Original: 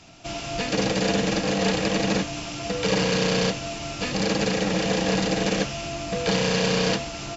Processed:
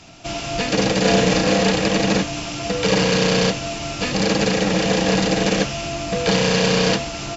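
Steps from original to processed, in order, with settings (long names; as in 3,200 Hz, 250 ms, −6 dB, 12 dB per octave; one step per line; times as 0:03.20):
0:01.02–0:01.61: double-tracking delay 32 ms −2.5 dB
level +5 dB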